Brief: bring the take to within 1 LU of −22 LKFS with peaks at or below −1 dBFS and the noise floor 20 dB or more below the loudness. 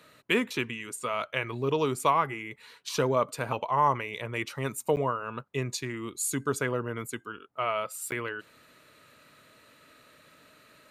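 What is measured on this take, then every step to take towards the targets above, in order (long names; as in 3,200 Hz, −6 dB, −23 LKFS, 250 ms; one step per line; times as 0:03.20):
number of dropouts 2; longest dropout 9.6 ms; integrated loudness −30.0 LKFS; sample peak −11.5 dBFS; target loudness −22.0 LKFS
→ repair the gap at 0:04.96/0:08.11, 9.6 ms
level +8 dB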